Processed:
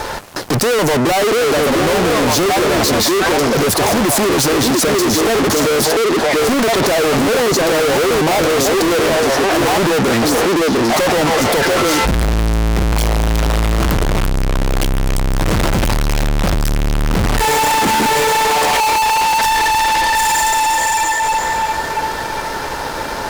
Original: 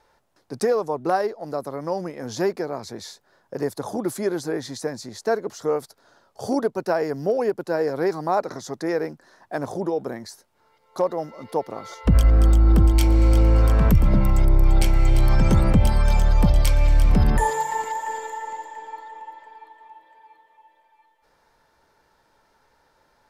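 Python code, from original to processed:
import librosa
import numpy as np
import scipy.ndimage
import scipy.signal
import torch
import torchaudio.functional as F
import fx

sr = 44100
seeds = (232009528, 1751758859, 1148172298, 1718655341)

y = fx.echo_stepped(x, sr, ms=694, hz=330.0, octaves=1.4, feedback_pct=70, wet_db=-2.0)
y = fx.power_curve(y, sr, exponent=0.7)
y = fx.fuzz(y, sr, gain_db=41.0, gate_db=-50.0)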